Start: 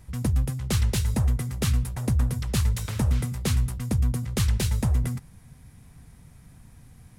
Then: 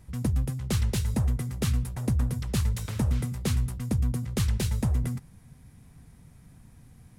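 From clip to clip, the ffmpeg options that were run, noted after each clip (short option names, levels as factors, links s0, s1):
-af "equalizer=f=250:w=0.54:g=3.5,volume=0.631"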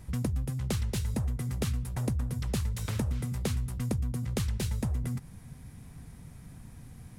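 -af "acompressor=threshold=0.0224:ratio=5,volume=1.68"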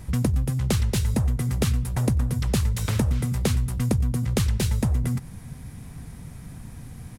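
-filter_complex "[0:a]asplit=2[s0][s1];[s1]adelay=93.29,volume=0.0447,highshelf=f=4000:g=-2.1[s2];[s0][s2]amix=inputs=2:normalize=0,volume=2.51"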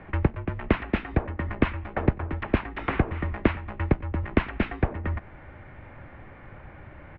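-af "highpass=f=250:t=q:w=0.5412,highpass=f=250:t=q:w=1.307,lowpass=f=2600:t=q:w=0.5176,lowpass=f=2600:t=q:w=0.7071,lowpass=f=2600:t=q:w=1.932,afreqshift=-160,volume=2.24"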